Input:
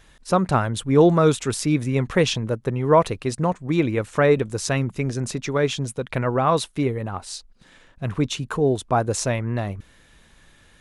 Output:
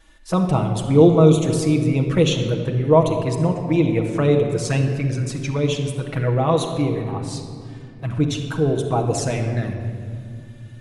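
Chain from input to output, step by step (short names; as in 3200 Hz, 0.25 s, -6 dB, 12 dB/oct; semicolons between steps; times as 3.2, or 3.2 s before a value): envelope flanger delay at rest 3.6 ms, full sweep at -17.5 dBFS; on a send: reverb RT60 2.3 s, pre-delay 6 ms, DRR 1.5 dB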